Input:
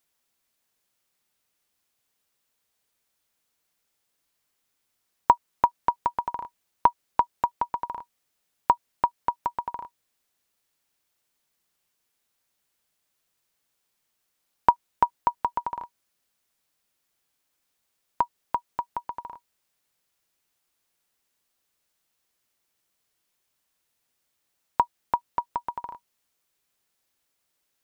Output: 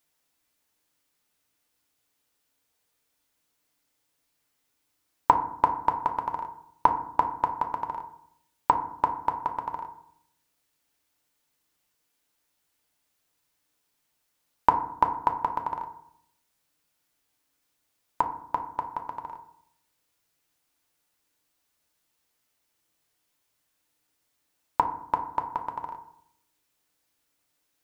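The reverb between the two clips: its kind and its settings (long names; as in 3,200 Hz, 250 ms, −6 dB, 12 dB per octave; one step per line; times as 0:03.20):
feedback delay network reverb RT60 0.69 s, low-frequency decay 1.4×, high-frequency decay 0.45×, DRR 4 dB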